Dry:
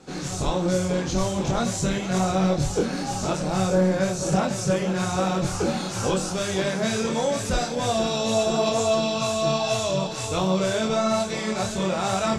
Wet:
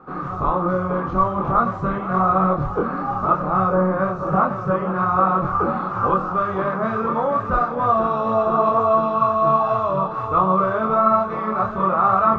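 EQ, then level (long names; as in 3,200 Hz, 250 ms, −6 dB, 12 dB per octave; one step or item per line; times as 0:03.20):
low-pass with resonance 1,200 Hz, resonance Q 13
high-frequency loss of the air 56 metres
0.0 dB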